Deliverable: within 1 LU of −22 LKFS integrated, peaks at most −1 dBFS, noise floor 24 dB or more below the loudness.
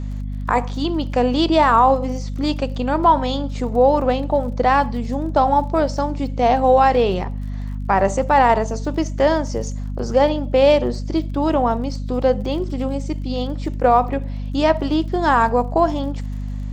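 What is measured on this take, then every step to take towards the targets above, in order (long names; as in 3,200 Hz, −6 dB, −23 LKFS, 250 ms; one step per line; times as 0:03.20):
crackle rate 36 per second; mains hum 50 Hz; hum harmonics up to 250 Hz; level of the hum −23 dBFS; integrated loudness −19.0 LKFS; sample peak −3.5 dBFS; target loudness −22.0 LKFS
→ click removal
mains-hum notches 50/100/150/200/250 Hz
level −3 dB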